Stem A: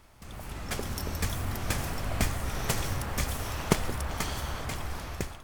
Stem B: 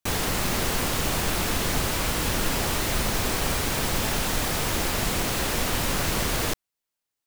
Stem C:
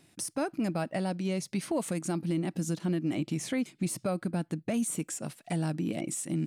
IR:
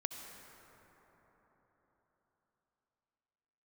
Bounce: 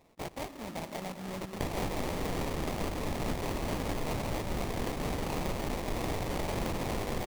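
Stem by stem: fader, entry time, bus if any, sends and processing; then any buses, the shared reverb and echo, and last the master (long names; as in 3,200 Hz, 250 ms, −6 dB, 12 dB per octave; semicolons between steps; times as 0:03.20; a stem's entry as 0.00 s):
muted
+3.0 dB, 1.55 s, no bus, no send, amplitude modulation by smooth noise, depth 65%
0.0 dB, 0.00 s, bus A, send −9.5 dB, no processing
bus A: 0.0 dB, high-pass filter 590 Hz 12 dB per octave; brickwall limiter −31 dBFS, peak gain reduction 8 dB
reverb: on, RT60 4.5 s, pre-delay 58 ms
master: sample-rate reduction 1,500 Hz, jitter 20%; downward compressor 4 to 1, threshold −31 dBFS, peak gain reduction 11 dB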